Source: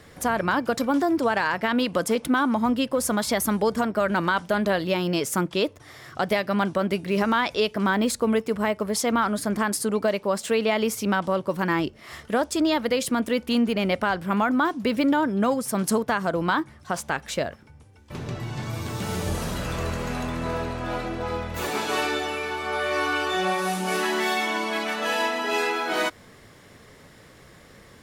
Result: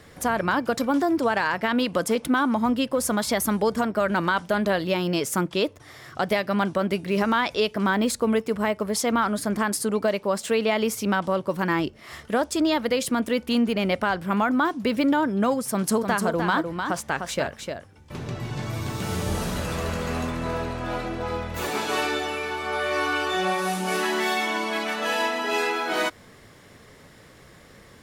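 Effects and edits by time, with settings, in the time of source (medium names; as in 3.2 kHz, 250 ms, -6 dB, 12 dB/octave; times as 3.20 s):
15.71–20.31 s: delay 303 ms -6 dB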